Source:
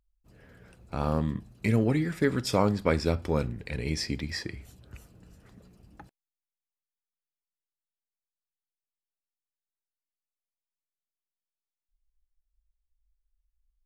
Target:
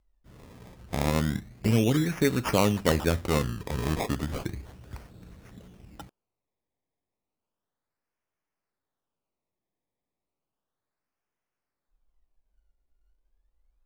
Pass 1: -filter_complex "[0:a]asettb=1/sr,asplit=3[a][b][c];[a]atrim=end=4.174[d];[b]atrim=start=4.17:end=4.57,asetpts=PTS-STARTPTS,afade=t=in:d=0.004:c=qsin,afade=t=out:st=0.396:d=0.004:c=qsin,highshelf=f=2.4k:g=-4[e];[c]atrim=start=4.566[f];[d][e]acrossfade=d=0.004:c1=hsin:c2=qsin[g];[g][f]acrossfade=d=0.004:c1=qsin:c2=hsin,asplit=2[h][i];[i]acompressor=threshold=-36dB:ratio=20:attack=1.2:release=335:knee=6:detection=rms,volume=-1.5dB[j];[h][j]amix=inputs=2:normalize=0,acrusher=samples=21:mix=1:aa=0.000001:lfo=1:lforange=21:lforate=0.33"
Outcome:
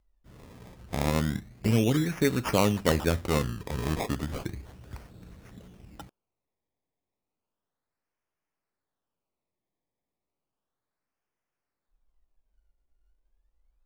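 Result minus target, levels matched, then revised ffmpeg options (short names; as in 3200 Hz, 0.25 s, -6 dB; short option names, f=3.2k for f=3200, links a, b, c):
compressor: peak gain reduction +6.5 dB
-filter_complex "[0:a]asettb=1/sr,asplit=3[a][b][c];[a]atrim=end=4.174[d];[b]atrim=start=4.17:end=4.57,asetpts=PTS-STARTPTS,afade=t=in:d=0.004:c=qsin,afade=t=out:st=0.396:d=0.004:c=qsin,highshelf=f=2.4k:g=-4[e];[c]atrim=start=4.566[f];[d][e]acrossfade=d=0.004:c1=hsin:c2=qsin[g];[g][f]acrossfade=d=0.004:c1=qsin:c2=hsin,asplit=2[h][i];[i]acompressor=threshold=-29dB:ratio=20:attack=1.2:release=335:knee=6:detection=rms,volume=-1.5dB[j];[h][j]amix=inputs=2:normalize=0,acrusher=samples=21:mix=1:aa=0.000001:lfo=1:lforange=21:lforate=0.33"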